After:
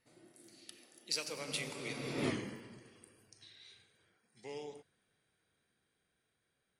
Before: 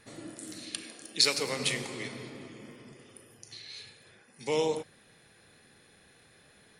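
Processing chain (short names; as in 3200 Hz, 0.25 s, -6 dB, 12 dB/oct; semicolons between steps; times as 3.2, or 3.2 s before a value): Doppler pass-by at 2.28, 25 m/s, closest 1.6 m; gain +13 dB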